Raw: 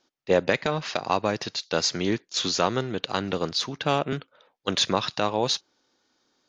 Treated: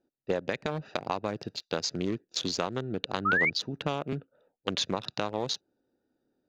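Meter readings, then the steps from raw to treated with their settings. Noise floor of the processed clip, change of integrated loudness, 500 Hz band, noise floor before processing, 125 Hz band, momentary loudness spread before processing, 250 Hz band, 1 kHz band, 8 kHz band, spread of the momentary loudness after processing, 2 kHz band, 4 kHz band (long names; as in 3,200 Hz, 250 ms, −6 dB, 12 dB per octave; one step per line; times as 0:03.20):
−83 dBFS, −5.5 dB, −7.0 dB, −72 dBFS, −4.5 dB, 5 LU, −5.0 dB, −6.5 dB, −7.5 dB, 9 LU, +1.0 dB, −7.0 dB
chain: adaptive Wiener filter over 41 samples
downward compressor 6 to 1, threshold −26 dBFS, peak gain reduction 10.5 dB
sound drawn into the spectrogram rise, 0:03.25–0:03.50, 1,200–2,400 Hz −25 dBFS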